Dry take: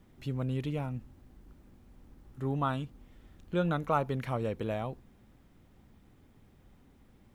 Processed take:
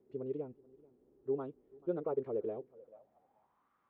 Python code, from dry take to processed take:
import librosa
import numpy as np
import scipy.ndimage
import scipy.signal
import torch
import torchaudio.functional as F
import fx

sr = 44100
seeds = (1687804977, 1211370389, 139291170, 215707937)

y = fx.echo_feedback(x, sr, ms=822, feedback_pct=30, wet_db=-24)
y = fx.filter_sweep_bandpass(y, sr, from_hz=410.0, to_hz=1200.0, start_s=5.0, end_s=6.99, q=6.2)
y = fx.stretch_vocoder(y, sr, factor=0.53)
y = F.gain(torch.from_numpy(y), 7.0).numpy()